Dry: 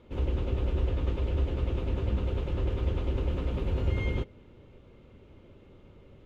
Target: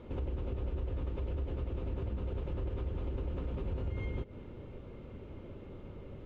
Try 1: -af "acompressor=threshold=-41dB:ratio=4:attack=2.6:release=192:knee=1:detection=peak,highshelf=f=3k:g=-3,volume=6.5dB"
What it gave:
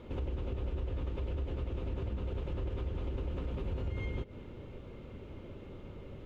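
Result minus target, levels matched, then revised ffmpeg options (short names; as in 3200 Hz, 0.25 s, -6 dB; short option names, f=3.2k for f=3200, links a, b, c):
4000 Hz band +4.0 dB
-af "acompressor=threshold=-41dB:ratio=4:attack=2.6:release=192:knee=1:detection=peak,highshelf=f=3k:g=-11,volume=6.5dB"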